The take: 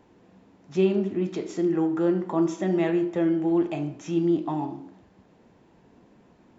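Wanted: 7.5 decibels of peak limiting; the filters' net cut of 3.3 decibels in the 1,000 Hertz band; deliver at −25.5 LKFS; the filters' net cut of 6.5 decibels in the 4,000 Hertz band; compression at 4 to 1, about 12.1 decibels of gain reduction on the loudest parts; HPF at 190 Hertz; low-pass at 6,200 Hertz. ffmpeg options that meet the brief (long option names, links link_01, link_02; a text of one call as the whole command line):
ffmpeg -i in.wav -af "highpass=190,lowpass=6200,equalizer=frequency=1000:width_type=o:gain=-4,equalizer=frequency=4000:width_type=o:gain=-8.5,acompressor=threshold=-34dB:ratio=4,volume=13.5dB,alimiter=limit=-17dB:level=0:latency=1" out.wav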